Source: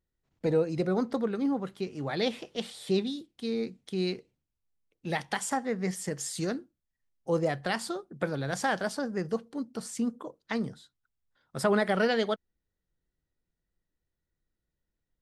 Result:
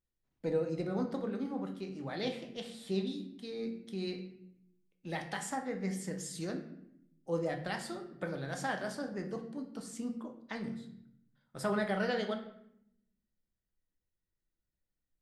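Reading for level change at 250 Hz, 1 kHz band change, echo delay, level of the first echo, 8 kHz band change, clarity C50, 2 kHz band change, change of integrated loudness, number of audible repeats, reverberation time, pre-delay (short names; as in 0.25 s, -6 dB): -6.0 dB, -7.0 dB, none, none, -7.5 dB, 9.0 dB, -6.5 dB, -6.5 dB, none, 0.80 s, 3 ms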